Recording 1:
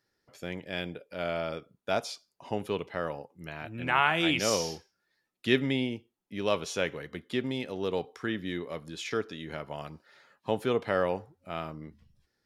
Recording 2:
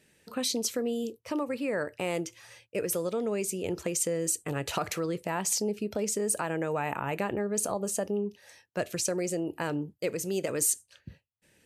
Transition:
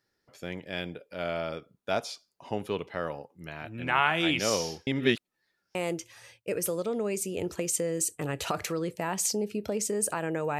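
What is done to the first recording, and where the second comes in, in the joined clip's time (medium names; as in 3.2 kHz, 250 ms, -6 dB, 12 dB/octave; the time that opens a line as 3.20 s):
recording 1
4.87–5.75 s: reverse
5.75 s: go over to recording 2 from 2.02 s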